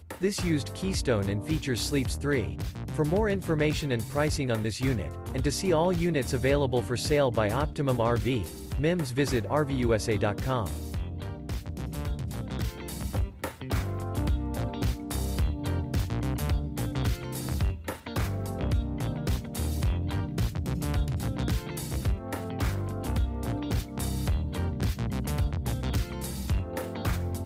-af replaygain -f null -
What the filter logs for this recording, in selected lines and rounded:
track_gain = +10.2 dB
track_peak = 0.164